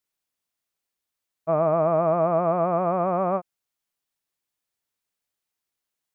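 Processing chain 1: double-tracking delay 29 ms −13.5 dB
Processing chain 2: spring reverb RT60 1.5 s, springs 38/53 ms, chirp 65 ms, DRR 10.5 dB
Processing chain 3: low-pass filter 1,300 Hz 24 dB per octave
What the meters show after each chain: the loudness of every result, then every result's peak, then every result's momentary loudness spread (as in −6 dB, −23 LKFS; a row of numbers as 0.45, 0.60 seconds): −23.0, −22.5, −23.0 LKFS; −10.5, −10.0, −11.5 dBFS; 6, 12, 6 LU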